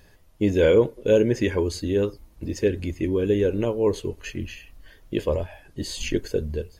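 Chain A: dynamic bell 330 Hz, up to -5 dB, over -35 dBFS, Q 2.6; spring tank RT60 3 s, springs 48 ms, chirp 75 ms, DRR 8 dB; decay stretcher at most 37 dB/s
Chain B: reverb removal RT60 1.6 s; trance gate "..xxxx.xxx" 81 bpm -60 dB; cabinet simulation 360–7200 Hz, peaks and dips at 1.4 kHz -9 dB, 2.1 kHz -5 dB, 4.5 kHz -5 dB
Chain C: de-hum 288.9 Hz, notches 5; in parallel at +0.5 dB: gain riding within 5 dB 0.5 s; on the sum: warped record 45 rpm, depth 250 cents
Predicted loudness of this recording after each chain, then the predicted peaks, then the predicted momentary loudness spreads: -23.5 LUFS, -28.5 LUFS, -18.5 LUFS; -7.0 dBFS, -10.5 dBFS, -2.5 dBFS; 12 LU, 20 LU, 11 LU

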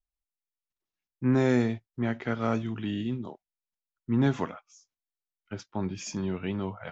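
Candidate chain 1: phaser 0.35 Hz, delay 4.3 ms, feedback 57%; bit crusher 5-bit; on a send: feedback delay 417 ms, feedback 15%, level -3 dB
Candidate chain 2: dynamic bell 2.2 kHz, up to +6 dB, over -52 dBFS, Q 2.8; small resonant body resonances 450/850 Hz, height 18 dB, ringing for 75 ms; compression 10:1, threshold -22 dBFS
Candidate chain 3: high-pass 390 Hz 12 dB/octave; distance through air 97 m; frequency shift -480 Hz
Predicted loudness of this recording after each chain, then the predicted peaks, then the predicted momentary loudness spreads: -25.5 LUFS, -30.0 LUFS, -37.0 LUFS; -9.5 dBFS, -14.0 dBFS, -19.0 dBFS; 17 LU, 12 LU, 15 LU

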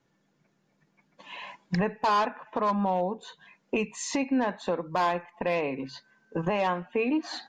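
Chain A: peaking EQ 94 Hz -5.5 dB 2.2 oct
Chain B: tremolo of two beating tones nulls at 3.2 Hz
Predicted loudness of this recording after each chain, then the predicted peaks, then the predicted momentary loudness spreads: -29.5 LUFS, -31.5 LUFS; -17.0 dBFS, -16.5 dBFS; 15 LU, 18 LU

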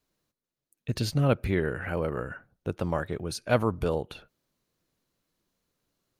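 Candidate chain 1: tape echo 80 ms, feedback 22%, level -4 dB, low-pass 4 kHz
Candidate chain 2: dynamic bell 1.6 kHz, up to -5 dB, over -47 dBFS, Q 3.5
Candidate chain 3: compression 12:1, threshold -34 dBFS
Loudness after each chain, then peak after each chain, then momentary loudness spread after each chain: -28.5 LUFS, -29.5 LUFS, -40.5 LUFS; -9.5 dBFS, -11.0 dBFS, -23.5 dBFS; 13 LU, 14 LU, 7 LU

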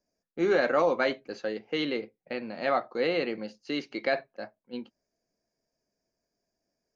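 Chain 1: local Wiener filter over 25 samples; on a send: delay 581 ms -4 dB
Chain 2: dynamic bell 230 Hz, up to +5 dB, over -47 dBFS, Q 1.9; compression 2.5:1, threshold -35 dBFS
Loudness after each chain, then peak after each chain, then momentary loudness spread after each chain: -29.5 LUFS, -37.0 LUFS; -12.5 dBFS, -19.0 dBFS; 19 LU, 8 LU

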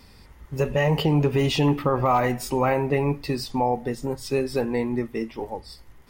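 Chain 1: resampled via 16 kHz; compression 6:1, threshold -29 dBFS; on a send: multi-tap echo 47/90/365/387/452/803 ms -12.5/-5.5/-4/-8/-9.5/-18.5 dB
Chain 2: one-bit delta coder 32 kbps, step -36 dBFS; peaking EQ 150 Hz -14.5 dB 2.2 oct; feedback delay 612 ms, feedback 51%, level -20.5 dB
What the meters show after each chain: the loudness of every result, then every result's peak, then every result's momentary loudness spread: -30.0 LUFS, -30.0 LUFS; -16.0 dBFS, -16.5 dBFS; 5 LU, 10 LU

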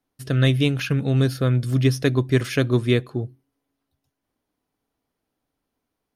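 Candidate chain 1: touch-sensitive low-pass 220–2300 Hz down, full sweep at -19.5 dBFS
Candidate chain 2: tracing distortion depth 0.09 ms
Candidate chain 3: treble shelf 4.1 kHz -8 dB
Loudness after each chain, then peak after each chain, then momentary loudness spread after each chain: -18.0 LUFS, -21.5 LUFS, -21.5 LUFS; -3.5 dBFS, -5.0 dBFS, -6.0 dBFS; 5 LU, 6 LU, 6 LU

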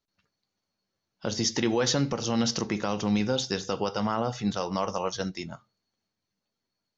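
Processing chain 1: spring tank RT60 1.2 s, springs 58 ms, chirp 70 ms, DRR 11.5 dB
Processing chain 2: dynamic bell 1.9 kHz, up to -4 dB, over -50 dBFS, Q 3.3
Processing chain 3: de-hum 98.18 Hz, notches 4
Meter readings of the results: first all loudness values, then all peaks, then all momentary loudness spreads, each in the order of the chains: -28.0 LUFS, -28.5 LUFS, -28.5 LUFS; -12.5 dBFS, -13.5 dBFS, -13.5 dBFS; 9 LU, 9 LU, 9 LU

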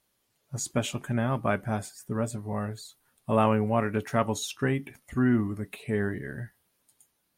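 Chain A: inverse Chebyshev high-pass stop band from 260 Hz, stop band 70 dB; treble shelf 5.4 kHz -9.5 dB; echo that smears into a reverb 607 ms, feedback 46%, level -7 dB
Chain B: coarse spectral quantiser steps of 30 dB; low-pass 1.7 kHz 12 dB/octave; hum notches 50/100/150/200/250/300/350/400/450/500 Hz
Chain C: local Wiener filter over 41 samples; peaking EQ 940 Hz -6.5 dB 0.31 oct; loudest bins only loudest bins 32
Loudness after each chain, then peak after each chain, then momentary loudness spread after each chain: -39.0 LUFS, -30.5 LUFS, -30.0 LUFS; -18.0 dBFS, -10.5 dBFS, -11.5 dBFS; 12 LU, 14 LU, 14 LU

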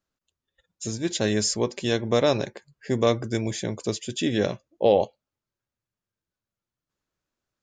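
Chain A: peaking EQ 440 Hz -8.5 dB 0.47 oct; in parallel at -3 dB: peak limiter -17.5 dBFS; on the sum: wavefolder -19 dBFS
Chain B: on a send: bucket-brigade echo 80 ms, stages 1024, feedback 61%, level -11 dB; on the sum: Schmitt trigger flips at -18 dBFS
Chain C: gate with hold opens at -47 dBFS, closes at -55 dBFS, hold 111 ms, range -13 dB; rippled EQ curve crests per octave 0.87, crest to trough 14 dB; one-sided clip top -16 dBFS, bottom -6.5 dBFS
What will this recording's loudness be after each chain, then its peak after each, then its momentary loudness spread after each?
-27.0 LUFS, -34.0 LUFS, -23.5 LUFS; -19.0 dBFS, -20.5 dBFS, -7.0 dBFS; 7 LU, 14 LU, 11 LU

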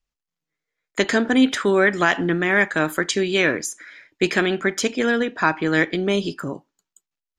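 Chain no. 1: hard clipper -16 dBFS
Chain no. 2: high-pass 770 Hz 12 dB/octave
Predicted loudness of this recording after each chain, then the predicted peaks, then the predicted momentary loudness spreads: -22.5 LUFS, -23.5 LUFS; -16.0 dBFS, -5.5 dBFS; 9 LU, 12 LU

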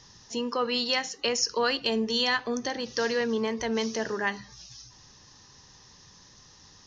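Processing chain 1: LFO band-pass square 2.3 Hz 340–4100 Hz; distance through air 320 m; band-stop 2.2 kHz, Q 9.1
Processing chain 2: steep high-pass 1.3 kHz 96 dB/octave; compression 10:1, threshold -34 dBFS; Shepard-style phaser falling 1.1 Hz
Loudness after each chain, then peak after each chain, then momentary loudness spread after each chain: -39.0 LUFS, -39.0 LUFS; -25.5 dBFS, -18.5 dBFS; 6 LU, 16 LU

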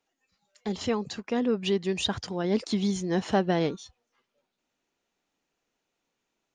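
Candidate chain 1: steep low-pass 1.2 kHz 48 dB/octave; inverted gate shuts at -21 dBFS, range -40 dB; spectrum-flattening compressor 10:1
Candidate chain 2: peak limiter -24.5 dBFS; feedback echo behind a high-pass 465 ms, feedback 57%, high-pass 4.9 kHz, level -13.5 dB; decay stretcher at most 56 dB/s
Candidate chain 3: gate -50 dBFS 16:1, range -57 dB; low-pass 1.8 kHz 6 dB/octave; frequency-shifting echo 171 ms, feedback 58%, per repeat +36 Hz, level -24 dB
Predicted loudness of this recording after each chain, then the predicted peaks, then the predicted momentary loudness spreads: -50.5 LUFS, -33.0 LUFS, -29.0 LUFS; -21.0 dBFS, -18.5 dBFS, -13.5 dBFS; 17 LU, 6 LU, 7 LU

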